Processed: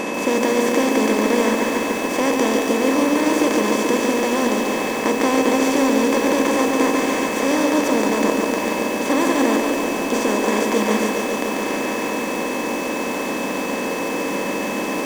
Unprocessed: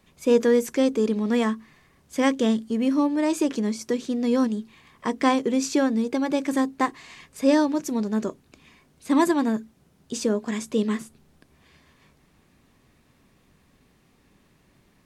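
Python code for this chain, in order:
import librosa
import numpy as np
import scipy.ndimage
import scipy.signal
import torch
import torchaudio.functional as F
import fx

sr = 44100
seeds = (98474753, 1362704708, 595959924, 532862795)

y = fx.bin_compress(x, sr, power=0.2)
y = y + 10.0 ** (-26.0 / 20.0) * np.sin(2.0 * np.pi * 2600.0 * np.arange(len(y)) / sr)
y = fx.echo_crushed(y, sr, ms=142, feedback_pct=80, bits=5, wet_db=-4.5)
y = y * 10.0 ** (-5.5 / 20.0)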